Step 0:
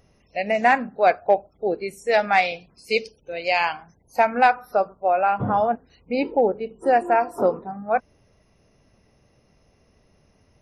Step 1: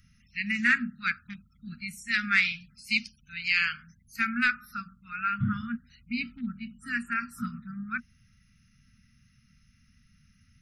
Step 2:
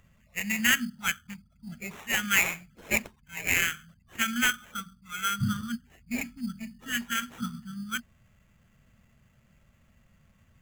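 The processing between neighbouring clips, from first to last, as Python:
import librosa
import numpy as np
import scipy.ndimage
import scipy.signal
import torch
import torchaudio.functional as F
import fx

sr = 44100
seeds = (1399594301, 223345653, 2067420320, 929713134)

y1 = scipy.signal.sosfilt(scipy.signal.cheby1(5, 1.0, [240.0, 1300.0], 'bandstop', fs=sr, output='sos'), x)
y2 = fx.sample_hold(y1, sr, seeds[0], rate_hz=4700.0, jitter_pct=0)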